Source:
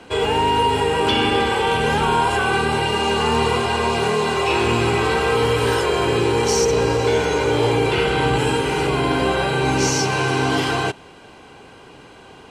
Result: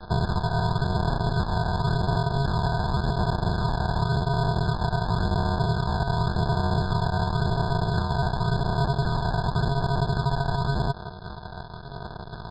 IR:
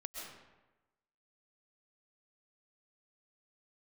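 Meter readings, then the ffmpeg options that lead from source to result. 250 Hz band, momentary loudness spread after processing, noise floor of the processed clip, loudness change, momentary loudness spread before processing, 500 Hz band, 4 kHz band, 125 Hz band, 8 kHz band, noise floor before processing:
−6.0 dB, 9 LU, −39 dBFS, −7.0 dB, 2 LU, −12.5 dB, −12.5 dB, +2.0 dB, below −20 dB, −44 dBFS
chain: -filter_complex "[0:a]bass=frequency=250:gain=7,treble=frequency=4000:gain=-4,acrossover=split=110|610[link_01][link_02][link_03];[link_01]acompressor=threshold=-33dB:ratio=4[link_04];[link_02]acompressor=threshold=-20dB:ratio=4[link_05];[link_03]acompressor=threshold=-24dB:ratio=4[link_06];[link_04][link_05][link_06]amix=inputs=3:normalize=0,aresample=11025,acrusher=samples=40:mix=1:aa=0.000001,aresample=44100,acompressor=threshold=-23dB:ratio=6,aphaser=in_gain=1:out_gain=1:delay=1.3:decay=0.24:speed=0.91:type=sinusoidal,aecho=1:1:1.2:0.35,asplit=2[link_07][link_08];[link_08]highpass=frequency=720:poles=1,volume=20dB,asoftclip=type=tanh:threshold=-12dB[link_09];[link_07][link_09]amix=inputs=2:normalize=0,lowpass=frequency=3100:poles=1,volume=-6dB,afftfilt=real='re*eq(mod(floor(b*sr/1024/1700),2),0)':imag='im*eq(mod(floor(b*sr/1024/1700),2),0)':win_size=1024:overlap=0.75"

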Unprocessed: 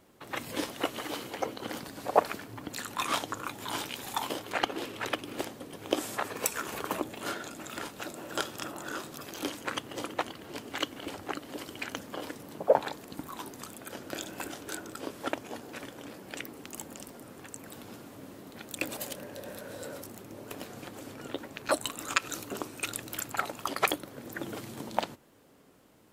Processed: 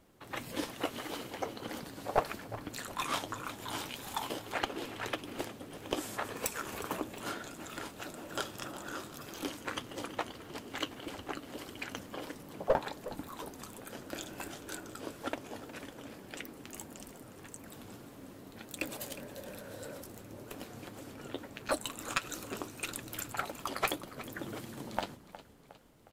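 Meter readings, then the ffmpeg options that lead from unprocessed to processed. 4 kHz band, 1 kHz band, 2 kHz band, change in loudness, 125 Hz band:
−4.0 dB, −4.5 dB, −4.0 dB, −4.5 dB, −0.5 dB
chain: -filter_complex "[0:a]lowshelf=frequency=76:gain=11,aeval=exprs='clip(val(0),-1,0.1)':channel_layout=same,flanger=delay=3.1:depth=8.1:regen=-57:speed=1.7:shape=triangular,asplit=6[link_01][link_02][link_03][link_04][link_05][link_06];[link_02]adelay=361,afreqshift=-33,volume=-15dB[link_07];[link_03]adelay=722,afreqshift=-66,volume=-21.2dB[link_08];[link_04]adelay=1083,afreqshift=-99,volume=-27.4dB[link_09];[link_05]adelay=1444,afreqshift=-132,volume=-33.6dB[link_10];[link_06]adelay=1805,afreqshift=-165,volume=-39.8dB[link_11];[link_01][link_07][link_08][link_09][link_10][link_11]amix=inputs=6:normalize=0"

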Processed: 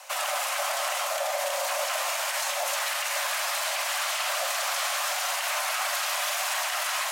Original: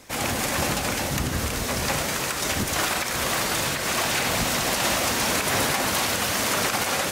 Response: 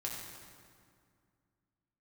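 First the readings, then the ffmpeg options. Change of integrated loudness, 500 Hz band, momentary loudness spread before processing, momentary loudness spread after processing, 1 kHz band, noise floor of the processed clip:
−3.5 dB, −4.0 dB, 4 LU, 1 LU, −2.0 dB, −30 dBFS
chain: -filter_complex "[0:a]alimiter=limit=-22.5dB:level=0:latency=1:release=61,afreqshift=500,asplit=2[link_01][link_02];[1:a]atrim=start_sample=2205,asetrate=29106,aresample=44100[link_03];[link_02][link_03]afir=irnorm=-1:irlink=0,volume=-7.5dB[link_04];[link_01][link_04]amix=inputs=2:normalize=0"

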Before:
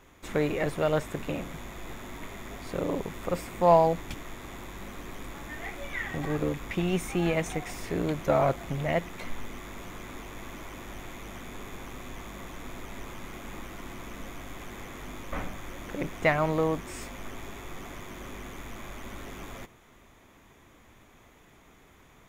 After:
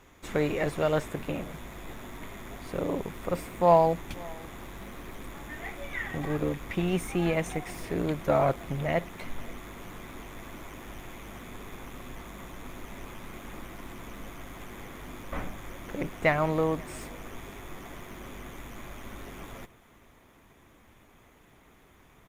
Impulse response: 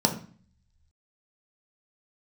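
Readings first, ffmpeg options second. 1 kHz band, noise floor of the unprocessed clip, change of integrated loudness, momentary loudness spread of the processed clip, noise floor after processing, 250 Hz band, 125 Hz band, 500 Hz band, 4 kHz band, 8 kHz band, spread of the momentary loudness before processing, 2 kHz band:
−0.5 dB, −57 dBFS, +2.5 dB, 18 LU, −58 dBFS, 0.0 dB, 0.0 dB, 0.0 dB, −1.5 dB, −2.0 dB, 16 LU, −0.5 dB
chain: -filter_complex "[0:a]asplit=2[link_01][link_02];[link_02]aecho=0:1:532|1064:0.0668|0.01[link_03];[link_01][link_03]amix=inputs=2:normalize=0" -ar 48000 -c:a libopus -b:a 48k

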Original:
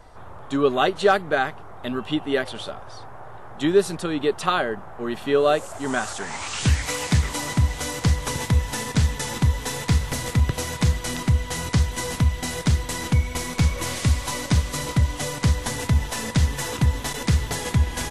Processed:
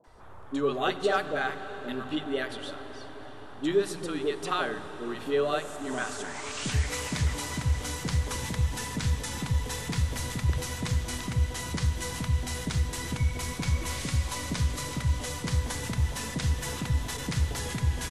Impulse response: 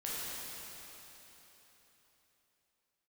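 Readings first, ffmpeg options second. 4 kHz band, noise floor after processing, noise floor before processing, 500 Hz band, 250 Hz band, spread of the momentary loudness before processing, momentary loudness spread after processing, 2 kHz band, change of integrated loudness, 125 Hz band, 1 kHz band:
−6.0 dB, −42 dBFS, −38 dBFS, −7.5 dB, −7.5 dB, 9 LU, 7 LU, −6.0 dB, −7.0 dB, −7.0 dB, −7.5 dB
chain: -filter_complex "[0:a]acrossover=split=160|690[link_01][link_02][link_03];[link_03]adelay=40[link_04];[link_01]adelay=70[link_05];[link_05][link_02][link_04]amix=inputs=3:normalize=0,aeval=exprs='0.447*(cos(1*acos(clip(val(0)/0.447,-1,1)))-cos(1*PI/2))+0.00794*(cos(5*acos(clip(val(0)/0.447,-1,1)))-cos(5*PI/2))+0.00282*(cos(7*acos(clip(val(0)/0.447,-1,1)))-cos(7*PI/2))':channel_layout=same,asplit=2[link_06][link_07];[1:a]atrim=start_sample=2205,asetrate=23814,aresample=44100[link_08];[link_07][link_08]afir=irnorm=-1:irlink=0,volume=-17dB[link_09];[link_06][link_09]amix=inputs=2:normalize=0,volume=-7.5dB"

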